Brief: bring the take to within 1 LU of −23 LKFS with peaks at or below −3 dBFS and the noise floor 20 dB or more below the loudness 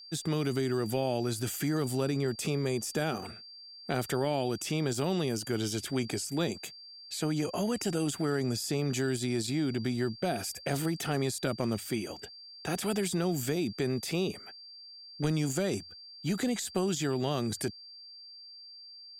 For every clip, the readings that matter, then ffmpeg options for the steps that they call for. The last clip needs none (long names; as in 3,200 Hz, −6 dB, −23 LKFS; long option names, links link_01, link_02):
interfering tone 4,700 Hz; level of the tone −47 dBFS; integrated loudness −32.0 LKFS; sample peak −15.5 dBFS; target loudness −23.0 LKFS
→ -af "bandreject=frequency=4700:width=30"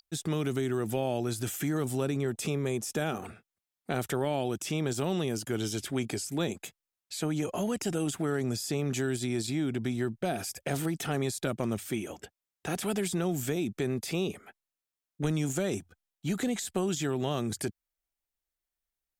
interfering tone none found; integrated loudness −32.0 LKFS; sample peak −15.5 dBFS; target loudness −23.0 LKFS
→ -af "volume=9dB"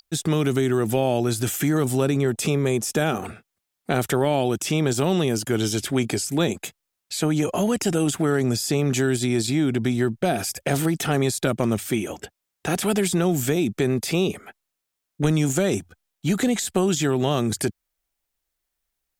integrated loudness −23.0 LKFS; sample peak −6.5 dBFS; background noise floor −82 dBFS